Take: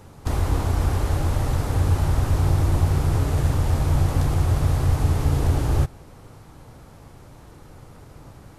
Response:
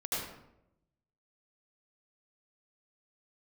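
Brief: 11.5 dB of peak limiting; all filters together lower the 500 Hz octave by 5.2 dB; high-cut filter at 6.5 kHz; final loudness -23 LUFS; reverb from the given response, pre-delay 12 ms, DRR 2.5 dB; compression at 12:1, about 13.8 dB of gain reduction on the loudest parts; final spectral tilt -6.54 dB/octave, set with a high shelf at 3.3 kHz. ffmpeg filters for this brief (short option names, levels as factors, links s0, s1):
-filter_complex "[0:a]lowpass=6500,equalizer=f=500:t=o:g=-7,highshelf=f=3300:g=3,acompressor=threshold=0.0355:ratio=12,alimiter=level_in=2.24:limit=0.0631:level=0:latency=1,volume=0.447,asplit=2[s0][s1];[1:a]atrim=start_sample=2205,adelay=12[s2];[s1][s2]afir=irnorm=-1:irlink=0,volume=0.422[s3];[s0][s3]amix=inputs=2:normalize=0,volume=6.31"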